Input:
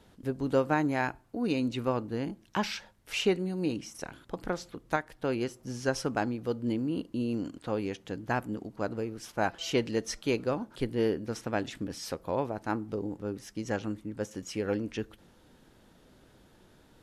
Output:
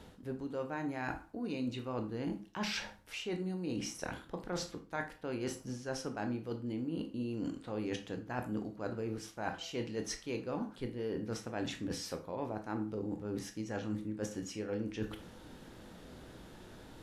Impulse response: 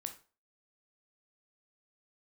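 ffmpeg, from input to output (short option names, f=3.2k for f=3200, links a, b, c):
-filter_complex "[0:a]highshelf=f=9.3k:g=-4,areverse,acompressor=threshold=-42dB:ratio=10,areverse[a];[1:a]atrim=start_sample=2205[b];[a][b]afir=irnorm=-1:irlink=0,volume=9.5dB"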